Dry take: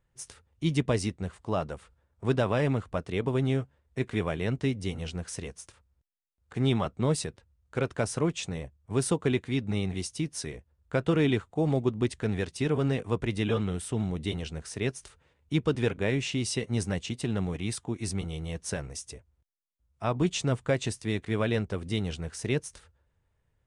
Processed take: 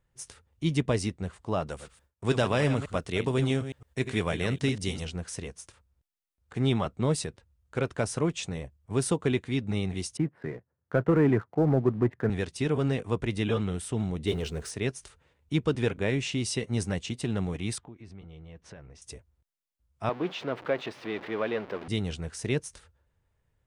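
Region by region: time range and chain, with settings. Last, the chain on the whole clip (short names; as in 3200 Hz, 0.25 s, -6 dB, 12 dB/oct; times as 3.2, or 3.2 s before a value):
1.67–5.05 reverse delay 0.108 s, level -10 dB + gate with hold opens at -54 dBFS, closes at -58 dBFS + high shelf 2800 Hz +9.5 dB
10.17–12.3 elliptic band-pass 110–1800 Hz, stop band 50 dB + sample leveller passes 1
14.27–14.71 G.711 law mismatch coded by mu + bell 420 Hz +9 dB 0.34 oct
17.78–19.02 LPF 2700 Hz + compressor 2.5:1, threshold -49 dBFS
20.09–21.88 zero-crossing step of -31 dBFS + HPF 350 Hz + air absorption 340 m
whole clip: dry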